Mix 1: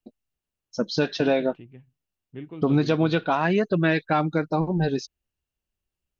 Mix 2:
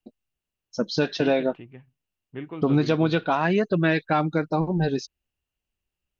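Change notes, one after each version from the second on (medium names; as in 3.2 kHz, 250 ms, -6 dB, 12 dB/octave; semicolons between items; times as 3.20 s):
second voice: add peaking EQ 1.2 kHz +9.5 dB 2.5 oct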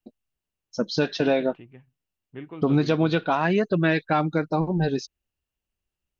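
second voice -3.0 dB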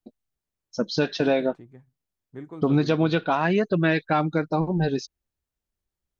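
second voice: remove resonant low-pass 2.8 kHz, resonance Q 12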